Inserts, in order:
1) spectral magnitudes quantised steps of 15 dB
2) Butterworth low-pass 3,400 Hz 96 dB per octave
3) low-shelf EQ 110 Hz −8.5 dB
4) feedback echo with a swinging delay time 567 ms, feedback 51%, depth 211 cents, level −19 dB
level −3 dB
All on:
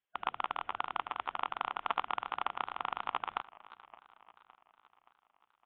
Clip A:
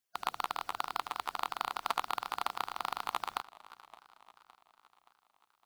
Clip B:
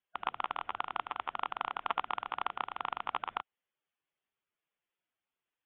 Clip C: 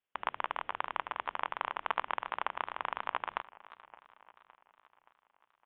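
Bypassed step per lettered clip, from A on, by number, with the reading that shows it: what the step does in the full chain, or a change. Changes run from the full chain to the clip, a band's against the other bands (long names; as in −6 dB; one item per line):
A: 2, 4 kHz band +3.5 dB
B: 4, change in momentary loudness spread −5 LU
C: 1, 2 kHz band +4.5 dB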